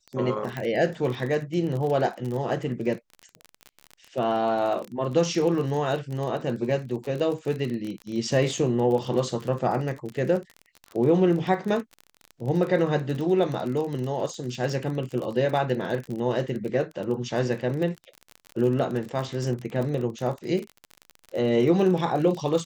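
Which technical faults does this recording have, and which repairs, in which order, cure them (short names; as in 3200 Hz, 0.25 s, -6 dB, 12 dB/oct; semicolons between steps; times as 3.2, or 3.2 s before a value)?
crackle 30/s -30 dBFS
0.57 pop -18 dBFS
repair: de-click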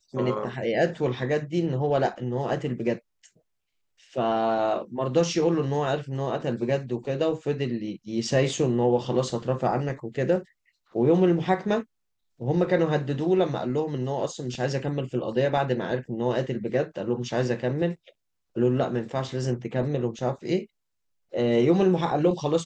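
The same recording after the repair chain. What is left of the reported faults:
none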